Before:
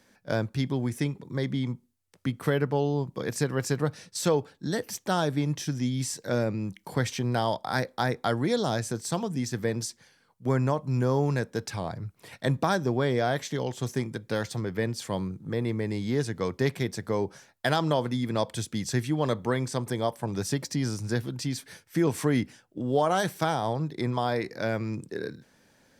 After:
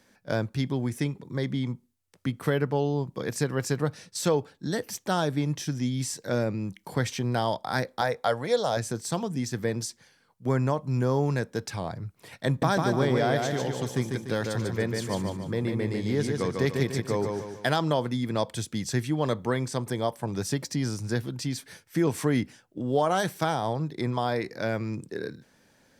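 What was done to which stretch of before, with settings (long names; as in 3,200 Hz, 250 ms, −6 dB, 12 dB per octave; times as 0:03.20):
0:08.01–0:08.77: low shelf with overshoot 420 Hz −6 dB, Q 3
0:12.47–0:17.69: repeating echo 147 ms, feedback 43%, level −4 dB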